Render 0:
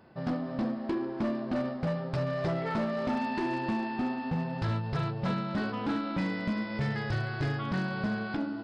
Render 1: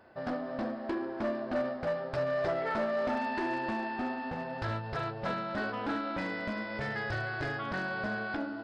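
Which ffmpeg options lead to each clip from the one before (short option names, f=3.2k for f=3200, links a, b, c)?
-af "equalizer=f=160:t=o:w=0.67:g=-12,equalizer=f=630:t=o:w=0.67:g=6,equalizer=f=1.6k:t=o:w=0.67:g=6,volume=-2.5dB"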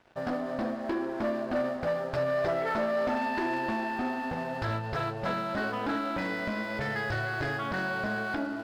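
-filter_complex "[0:a]asplit=2[a][b];[b]alimiter=level_in=6dB:limit=-24dB:level=0:latency=1,volume=-6dB,volume=-2dB[c];[a][c]amix=inputs=2:normalize=0,aeval=exprs='sgn(val(0))*max(abs(val(0))-0.00237,0)':c=same"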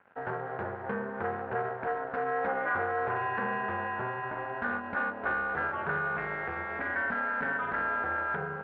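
-af "aeval=exprs='val(0)*sin(2*PI*130*n/s)':c=same,highpass=110,equalizer=f=130:t=q:w=4:g=-4,equalizer=f=320:t=q:w=4:g=-8,equalizer=f=1k:t=q:w=4:g=3,equalizer=f=1.5k:t=q:w=4:g=9,lowpass=f=2.4k:w=0.5412,lowpass=f=2.4k:w=1.3066"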